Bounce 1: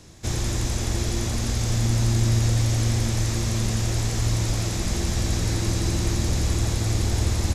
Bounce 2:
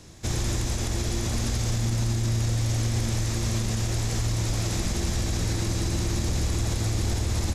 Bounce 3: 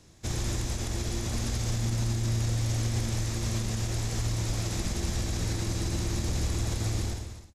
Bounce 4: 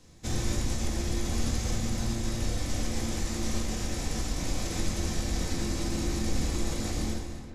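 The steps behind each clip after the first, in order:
brickwall limiter −17.5 dBFS, peak gain reduction 7.5 dB
fade-out on the ending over 0.56 s; expander for the loud parts 1.5 to 1, over −35 dBFS; level −2.5 dB
delay with a low-pass on its return 358 ms, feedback 67%, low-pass 2,700 Hz, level −14 dB; convolution reverb RT60 0.35 s, pre-delay 4 ms, DRR 0 dB; level −2.5 dB

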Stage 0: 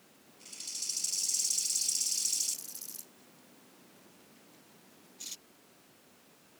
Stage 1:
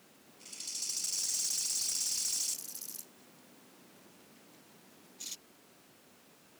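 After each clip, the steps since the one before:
hard clipping −29 dBFS, distortion −10 dB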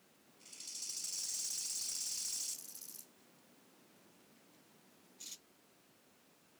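flanger 1.1 Hz, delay 9.9 ms, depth 8.6 ms, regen −58%
level −2.5 dB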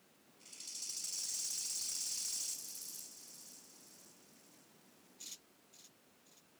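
feedback echo at a low word length 527 ms, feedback 55%, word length 11 bits, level −11 dB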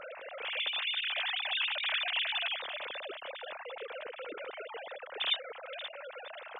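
three sine waves on the formant tracks
level +8.5 dB

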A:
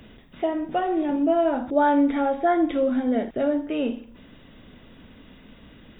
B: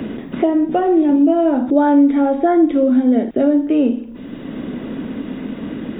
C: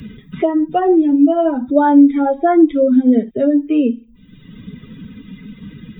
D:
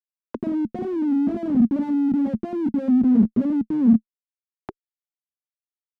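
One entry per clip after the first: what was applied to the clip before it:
parametric band 290 Hz +11 dB 1.7 octaves; multiband upward and downward compressor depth 70%
spectral dynamics exaggerated over time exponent 2; level +5 dB
Chebyshev band-pass filter 150–1,900 Hz, order 5; comparator with hysteresis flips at −23 dBFS; envelope filter 220–1,400 Hz, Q 5.7, down, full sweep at −20 dBFS; level +6.5 dB

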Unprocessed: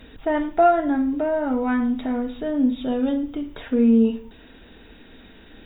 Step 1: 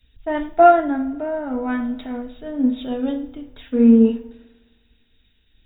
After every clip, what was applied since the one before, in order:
spring reverb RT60 3.2 s, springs 51 ms, chirp 35 ms, DRR 15.5 dB
multiband upward and downward expander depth 100%
level −1 dB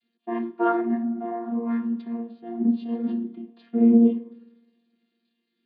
channel vocoder with a chord as carrier bare fifth, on A#3
flanger 0.61 Hz, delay 0.3 ms, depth 7.9 ms, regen −72%

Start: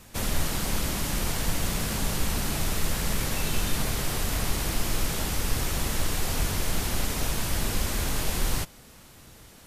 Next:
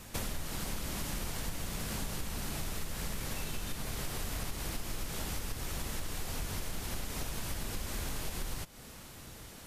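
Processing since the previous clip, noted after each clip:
downward compressor 10 to 1, threshold −34 dBFS, peak gain reduction 16 dB
level +1 dB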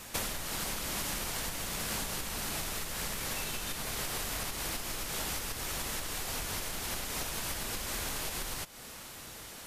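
low-shelf EQ 320 Hz −10.5 dB
level +5.5 dB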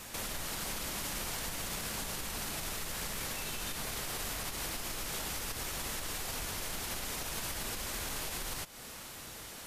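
brickwall limiter −28 dBFS, peak gain reduction 7.5 dB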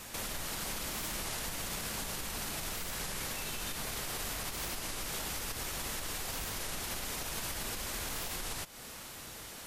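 wow of a warped record 33 1/3 rpm, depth 160 cents

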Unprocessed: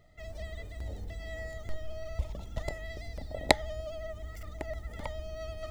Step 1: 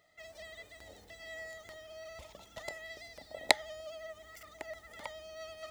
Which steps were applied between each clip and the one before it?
high-pass filter 1,100 Hz 6 dB per octave
level +1 dB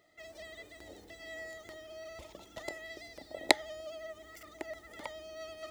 parametric band 330 Hz +11.5 dB 0.68 octaves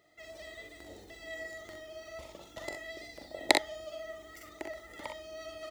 ambience of single reflections 43 ms −7 dB, 63 ms −7 dB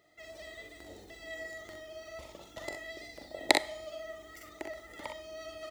four-comb reverb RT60 0.74 s, combs from 32 ms, DRR 19.5 dB

